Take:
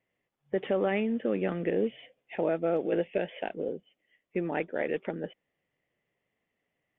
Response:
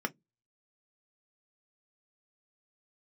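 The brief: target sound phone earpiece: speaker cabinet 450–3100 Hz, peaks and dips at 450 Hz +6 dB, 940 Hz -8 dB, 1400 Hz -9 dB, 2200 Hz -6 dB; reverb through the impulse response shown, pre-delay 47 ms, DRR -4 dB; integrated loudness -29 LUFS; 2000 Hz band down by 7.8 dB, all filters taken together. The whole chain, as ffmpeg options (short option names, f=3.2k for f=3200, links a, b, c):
-filter_complex "[0:a]equalizer=f=2k:t=o:g=-3.5,asplit=2[a][b];[1:a]atrim=start_sample=2205,adelay=47[c];[b][c]afir=irnorm=-1:irlink=0,volume=-1.5dB[d];[a][d]amix=inputs=2:normalize=0,highpass=450,equalizer=f=450:t=q:w=4:g=6,equalizer=f=940:t=q:w=4:g=-8,equalizer=f=1.4k:t=q:w=4:g=-9,equalizer=f=2.2k:t=q:w=4:g=-6,lowpass=f=3.1k:w=0.5412,lowpass=f=3.1k:w=1.3066,volume=-2.5dB"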